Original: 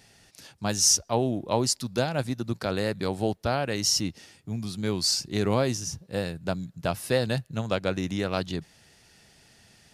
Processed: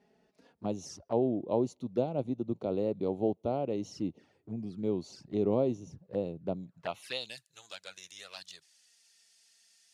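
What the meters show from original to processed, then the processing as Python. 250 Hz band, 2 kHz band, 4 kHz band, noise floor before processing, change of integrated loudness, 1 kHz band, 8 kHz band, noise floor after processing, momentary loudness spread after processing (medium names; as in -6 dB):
-4.0 dB, -14.5 dB, -16.5 dB, -58 dBFS, -7.0 dB, -9.0 dB, -25.5 dB, -73 dBFS, 16 LU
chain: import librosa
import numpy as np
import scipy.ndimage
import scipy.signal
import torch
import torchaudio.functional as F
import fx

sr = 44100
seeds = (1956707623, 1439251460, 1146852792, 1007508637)

y = fx.filter_sweep_bandpass(x, sr, from_hz=390.0, to_hz=7100.0, start_s=6.53, end_s=7.38, q=0.95)
y = fx.env_flanger(y, sr, rest_ms=5.1, full_db=-33.0)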